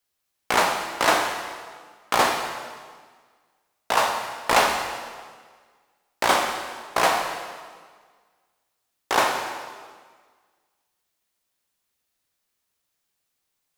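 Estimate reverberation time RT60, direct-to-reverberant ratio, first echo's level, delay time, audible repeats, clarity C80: 1.6 s, 2.0 dB, no echo, no echo, no echo, 6.0 dB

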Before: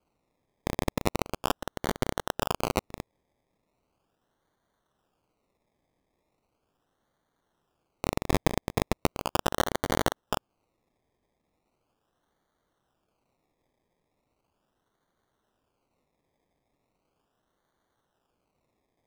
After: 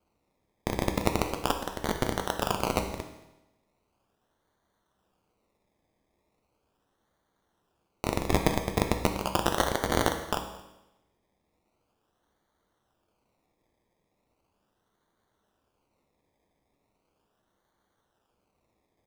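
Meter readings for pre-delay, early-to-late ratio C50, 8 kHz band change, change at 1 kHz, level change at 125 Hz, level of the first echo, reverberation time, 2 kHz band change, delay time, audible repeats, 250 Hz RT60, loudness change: 5 ms, 7.5 dB, +1.5 dB, +1.5 dB, +1.0 dB, -23.0 dB, 0.95 s, +1.5 dB, 224 ms, 1, 0.95 s, +1.5 dB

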